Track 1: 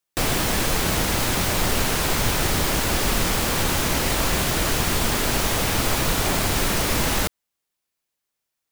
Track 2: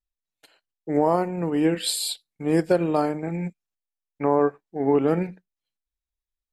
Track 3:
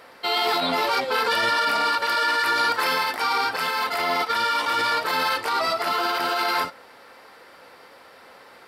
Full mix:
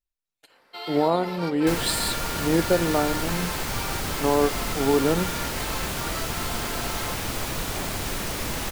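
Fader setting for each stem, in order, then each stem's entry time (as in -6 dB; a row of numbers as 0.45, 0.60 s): -7.5, -1.0, -13.0 dB; 1.50, 0.00, 0.50 s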